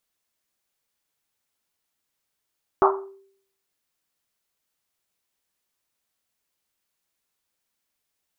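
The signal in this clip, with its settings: Risset drum, pitch 390 Hz, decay 0.64 s, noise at 990 Hz, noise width 600 Hz, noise 50%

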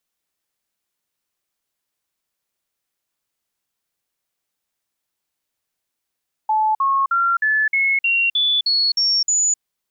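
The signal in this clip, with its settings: stepped sine 866 Hz up, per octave 3, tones 10, 0.26 s, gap 0.05 s -14.5 dBFS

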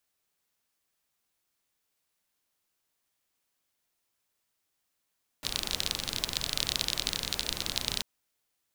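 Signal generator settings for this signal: rain from filtered ticks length 2.59 s, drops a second 32, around 3.9 kHz, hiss -6 dB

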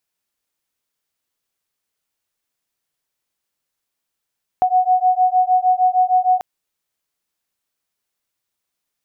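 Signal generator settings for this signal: beating tones 734 Hz, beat 6.5 Hz, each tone -15.5 dBFS 1.79 s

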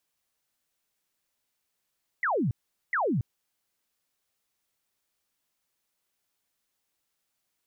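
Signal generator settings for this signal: burst of laser zaps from 2.1 kHz, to 100 Hz, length 0.28 s sine, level -23.5 dB, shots 2, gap 0.42 s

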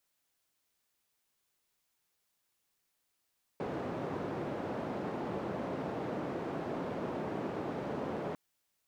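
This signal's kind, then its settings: noise band 150–540 Hz, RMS -37.5 dBFS 4.75 s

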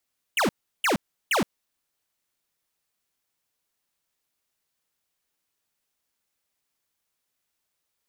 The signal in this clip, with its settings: burst of laser zaps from 3.2 kHz, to 160 Hz, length 0.12 s square, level -22 dB, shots 3, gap 0.35 s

